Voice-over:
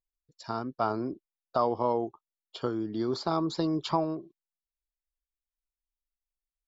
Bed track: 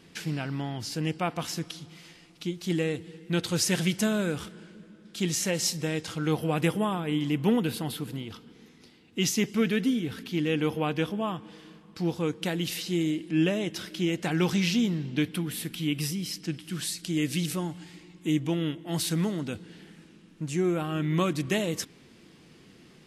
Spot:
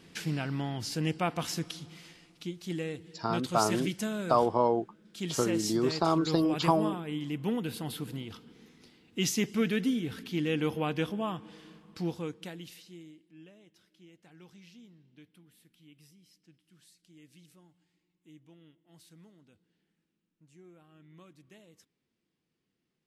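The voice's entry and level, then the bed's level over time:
2.75 s, +2.0 dB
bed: 1.95 s -1 dB
2.68 s -7.5 dB
7.56 s -7.5 dB
8.00 s -3 dB
11.97 s -3 dB
13.37 s -29 dB

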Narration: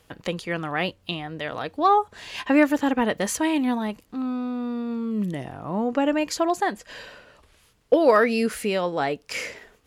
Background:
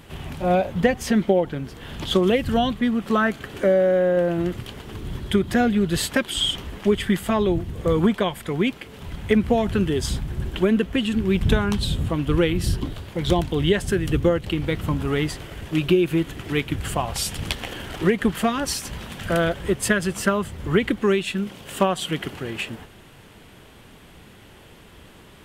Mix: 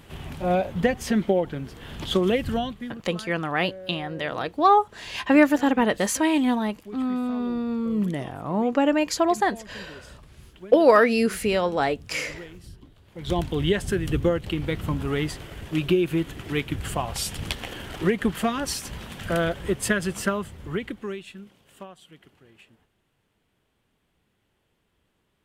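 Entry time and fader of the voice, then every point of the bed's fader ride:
2.80 s, +1.5 dB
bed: 2.48 s -3 dB
3.15 s -22 dB
12.97 s -22 dB
13.39 s -3 dB
20.19 s -3 dB
22.07 s -24.5 dB

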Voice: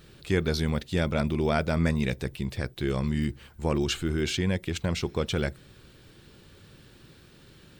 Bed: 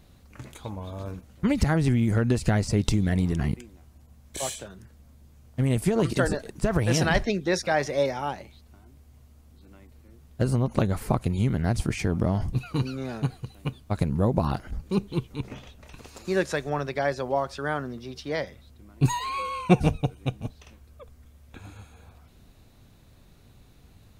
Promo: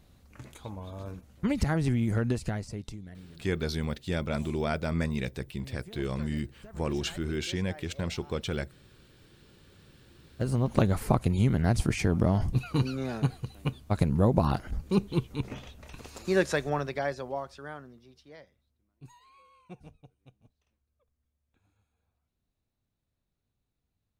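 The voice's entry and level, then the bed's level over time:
3.15 s, -4.5 dB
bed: 2.27 s -4.5 dB
3.23 s -24.5 dB
9.43 s -24.5 dB
10.74 s 0 dB
16.64 s 0 dB
18.96 s -28.5 dB

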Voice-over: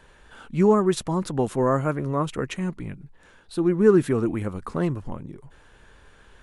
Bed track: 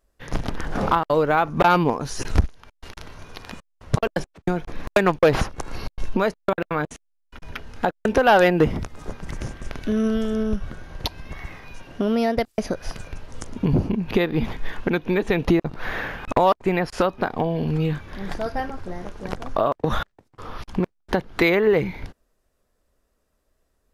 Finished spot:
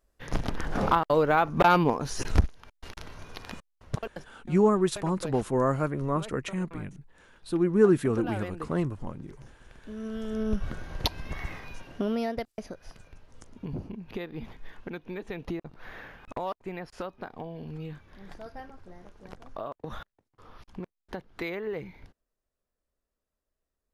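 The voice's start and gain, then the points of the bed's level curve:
3.95 s, -3.5 dB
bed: 3.61 s -3.5 dB
4.44 s -22 dB
9.76 s -22 dB
10.67 s -0.5 dB
11.57 s -0.5 dB
12.80 s -16 dB

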